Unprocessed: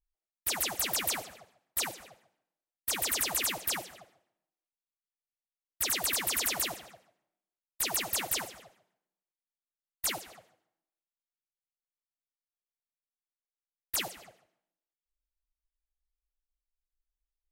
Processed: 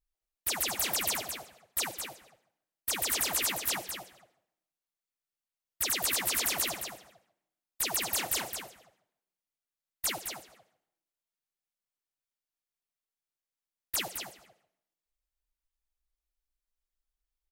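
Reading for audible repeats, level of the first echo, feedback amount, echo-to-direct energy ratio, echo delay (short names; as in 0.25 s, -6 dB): 1, -7.5 dB, no steady repeat, -7.5 dB, 0.216 s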